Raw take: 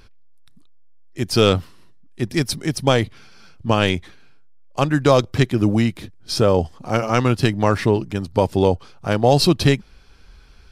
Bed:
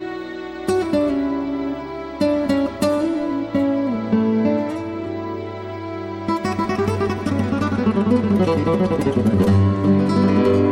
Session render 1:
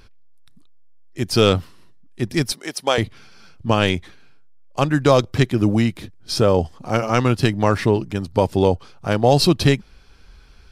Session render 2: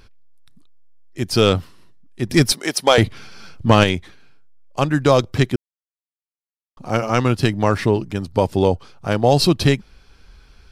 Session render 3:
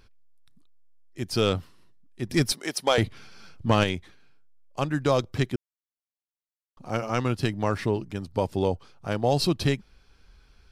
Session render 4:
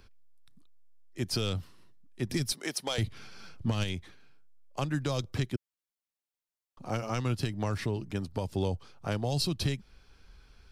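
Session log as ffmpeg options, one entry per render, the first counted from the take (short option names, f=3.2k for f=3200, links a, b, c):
-filter_complex "[0:a]asettb=1/sr,asplit=3[a][b][c];[a]atrim=end=2.524[d];[b]atrim=start=2.52:end=2.98,asetpts=PTS-STARTPTS,afade=t=in:d=0.004:c=qsin,afade=t=out:st=0.456:d=0.004:c=qsin,highpass=480[e];[c]atrim=start=2.976[f];[d][e]acrossfade=d=0.004:c1=hsin:c2=qsin[g];[g][f]acrossfade=d=0.004:c1=qsin:c2=hsin"
-filter_complex "[0:a]asettb=1/sr,asplit=3[a][b][c];[a]atrim=end=2.294[d];[b]atrim=start=2.29:end=3.84,asetpts=PTS-STARTPTS,afade=t=in:d=0.004:c=qsin,afade=t=out:st=1.546:d=0.004:c=qsin,acontrast=82[e];[c]atrim=start=3.836[f];[d][e]acrossfade=d=0.004:c1=hsin:c2=qsin[g];[g][f]acrossfade=d=0.004:c1=qsin:c2=hsin,asplit=3[h][i][j];[h]atrim=end=5.56,asetpts=PTS-STARTPTS,afade=t=out:st=5.556:d=0.004:c=hsin[k];[i]atrim=start=5.56:end=6.77,asetpts=PTS-STARTPTS,volume=0[l];[j]atrim=start=6.77,asetpts=PTS-STARTPTS,afade=t=in:d=0.004:c=hsin[m];[k][l][m]concat=n=3:v=0:a=1"
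-af "volume=-8.5dB"
-filter_complex "[0:a]acrossover=split=170|3000[a][b][c];[b]acompressor=threshold=-30dB:ratio=6[d];[a][d][c]amix=inputs=3:normalize=0,alimiter=limit=-19.5dB:level=0:latency=1:release=216"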